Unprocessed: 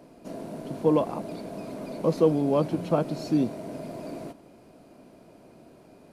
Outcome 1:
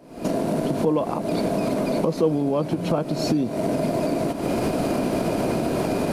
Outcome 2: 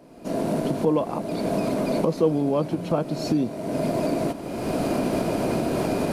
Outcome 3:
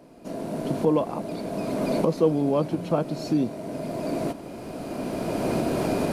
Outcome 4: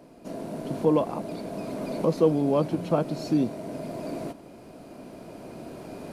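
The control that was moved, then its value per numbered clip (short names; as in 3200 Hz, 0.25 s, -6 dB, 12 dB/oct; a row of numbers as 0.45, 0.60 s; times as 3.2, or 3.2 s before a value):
recorder AGC, rising by: 86, 33, 13, 5.1 dB/s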